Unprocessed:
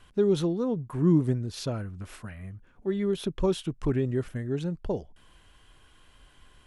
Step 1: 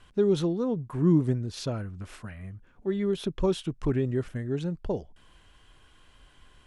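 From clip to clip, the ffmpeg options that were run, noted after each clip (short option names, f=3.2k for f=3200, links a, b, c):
-af "lowpass=9.7k"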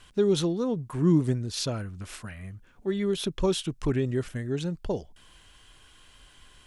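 -af "highshelf=f=2.6k:g=10"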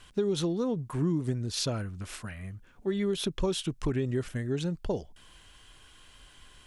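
-af "acompressor=threshold=-24dB:ratio=10"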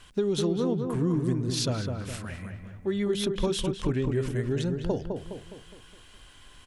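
-filter_complex "[0:a]asplit=2[a][b];[b]adelay=207,lowpass=f=1.8k:p=1,volume=-4.5dB,asplit=2[c][d];[d]adelay=207,lowpass=f=1.8k:p=1,volume=0.49,asplit=2[e][f];[f]adelay=207,lowpass=f=1.8k:p=1,volume=0.49,asplit=2[g][h];[h]adelay=207,lowpass=f=1.8k:p=1,volume=0.49,asplit=2[i][j];[j]adelay=207,lowpass=f=1.8k:p=1,volume=0.49,asplit=2[k][l];[l]adelay=207,lowpass=f=1.8k:p=1,volume=0.49[m];[a][c][e][g][i][k][m]amix=inputs=7:normalize=0,volume=1.5dB"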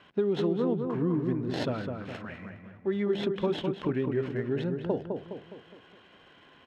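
-filter_complex "[0:a]acrossover=split=3400[a][b];[b]acrusher=samples=37:mix=1:aa=0.000001[c];[a][c]amix=inputs=2:normalize=0,highpass=170,lowpass=5.5k"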